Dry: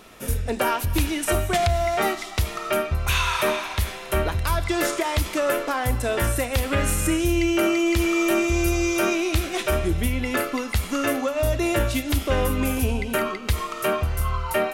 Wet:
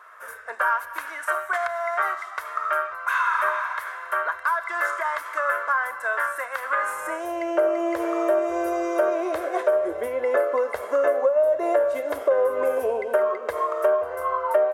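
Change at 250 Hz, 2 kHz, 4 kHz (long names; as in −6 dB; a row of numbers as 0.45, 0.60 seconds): −9.5 dB, +1.0 dB, below −15 dB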